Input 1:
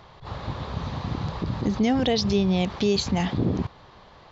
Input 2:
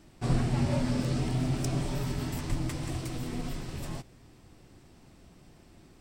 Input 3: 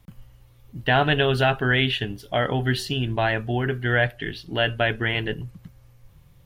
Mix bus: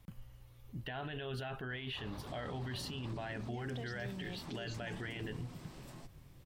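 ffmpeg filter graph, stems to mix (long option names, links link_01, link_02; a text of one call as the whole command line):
ffmpeg -i stem1.wav -i stem2.wav -i stem3.wav -filter_complex "[0:a]acompressor=threshold=-29dB:ratio=6,adelay=1700,volume=-13dB[link_01];[1:a]highpass=frequency=130:width=0.5412,highpass=frequency=130:width=1.3066,acompressor=threshold=-40dB:ratio=4,adelay=2050,volume=-9.5dB[link_02];[2:a]alimiter=limit=-17dB:level=0:latency=1:release=28,acompressor=threshold=-40dB:ratio=1.5,volume=-5dB[link_03];[link_01][link_02][link_03]amix=inputs=3:normalize=0,alimiter=level_in=9.5dB:limit=-24dB:level=0:latency=1:release=17,volume=-9.5dB" out.wav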